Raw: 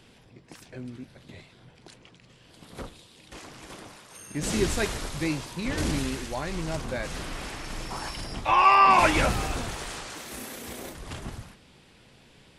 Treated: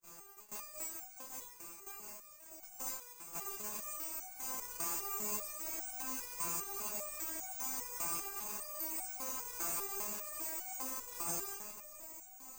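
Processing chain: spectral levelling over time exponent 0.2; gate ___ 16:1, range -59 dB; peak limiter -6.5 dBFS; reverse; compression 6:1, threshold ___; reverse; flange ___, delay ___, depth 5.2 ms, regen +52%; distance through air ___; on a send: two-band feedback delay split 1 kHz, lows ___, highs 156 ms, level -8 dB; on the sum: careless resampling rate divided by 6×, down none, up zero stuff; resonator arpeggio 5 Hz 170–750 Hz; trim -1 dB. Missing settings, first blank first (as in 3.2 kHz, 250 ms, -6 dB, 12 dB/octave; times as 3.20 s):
-16 dBFS, -27 dBFS, 0.35 Hz, 5.3 ms, 110 m, 646 ms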